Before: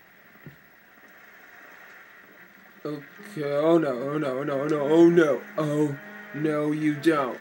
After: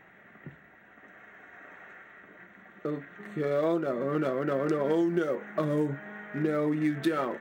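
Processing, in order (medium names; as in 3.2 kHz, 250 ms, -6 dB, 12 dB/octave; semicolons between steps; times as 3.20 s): local Wiener filter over 9 samples; compression 12:1, threshold -23 dBFS, peak gain reduction 11.5 dB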